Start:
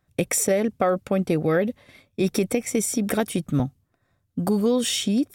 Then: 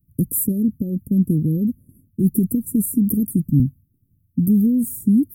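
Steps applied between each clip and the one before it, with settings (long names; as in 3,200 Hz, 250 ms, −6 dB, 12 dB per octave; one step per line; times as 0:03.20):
inverse Chebyshev band-stop filter 770–4,800 Hz, stop band 60 dB
high-shelf EQ 11,000 Hz +6 dB
level +8.5 dB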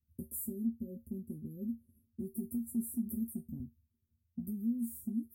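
downward compressor, threshold −18 dBFS, peak gain reduction 7.5 dB
tuned comb filter 77 Hz, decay 0.18 s, harmonics odd, mix 100%
level −7.5 dB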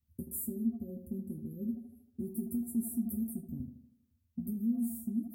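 tape delay 78 ms, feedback 58%, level −8 dB, low-pass 2,200 Hz
level +2 dB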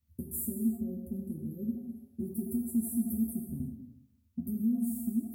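reverb whose tail is shaped and stops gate 390 ms falling, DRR 4 dB
level +1.5 dB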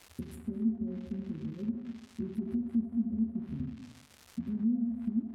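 surface crackle 390 per second −41 dBFS
treble cut that deepens with the level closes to 690 Hz, closed at −28.5 dBFS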